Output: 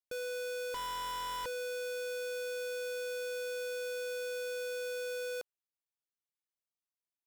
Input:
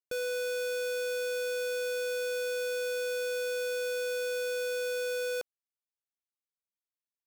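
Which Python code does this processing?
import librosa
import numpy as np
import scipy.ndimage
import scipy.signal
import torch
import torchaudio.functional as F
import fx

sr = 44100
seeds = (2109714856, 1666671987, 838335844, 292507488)

y = fx.doppler_dist(x, sr, depth_ms=0.74, at=(0.74, 1.46))
y = F.gain(torch.from_numpy(y), -5.5).numpy()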